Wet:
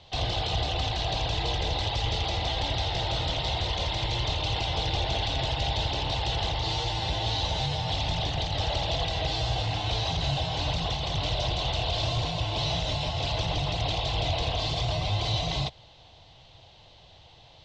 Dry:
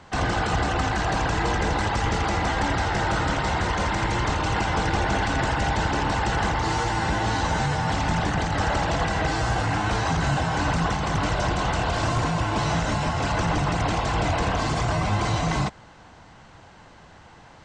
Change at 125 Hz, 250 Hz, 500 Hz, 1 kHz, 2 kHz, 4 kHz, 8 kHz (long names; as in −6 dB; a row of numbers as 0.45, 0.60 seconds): −4.0, −11.0, −5.0, −8.0, −10.0, +5.0, −7.0 decibels